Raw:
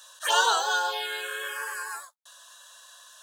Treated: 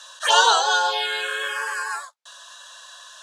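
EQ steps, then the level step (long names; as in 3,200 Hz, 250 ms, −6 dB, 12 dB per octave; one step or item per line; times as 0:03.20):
dynamic equaliser 1,600 Hz, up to −4 dB, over −34 dBFS, Q 0.87
band-pass filter 440–6,500 Hz
+9.0 dB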